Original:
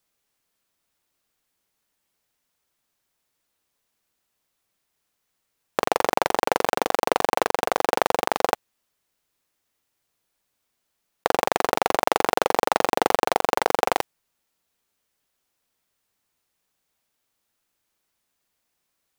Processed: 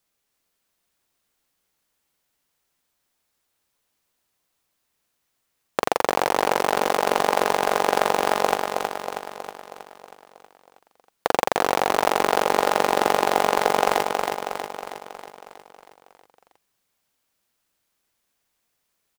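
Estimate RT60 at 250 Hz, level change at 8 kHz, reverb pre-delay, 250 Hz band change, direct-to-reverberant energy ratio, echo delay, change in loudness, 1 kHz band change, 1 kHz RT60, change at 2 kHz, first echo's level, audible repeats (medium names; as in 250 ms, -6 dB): no reverb, +2.0 dB, no reverb, +1.5 dB, no reverb, 319 ms, +1.0 dB, +2.0 dB, no reverb, +2.0 dB, -4.5 dB, 7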